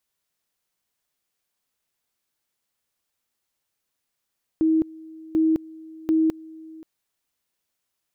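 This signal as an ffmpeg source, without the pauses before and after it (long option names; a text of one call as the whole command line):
ffmpeg -f lavfi -i "aevalsrc='pow(10,(-16-22.5*gte(mod(t,0.74),0.21))/20)*sin(2*PI*319*t)':duration=2.22:sample_rate=44100" out.wav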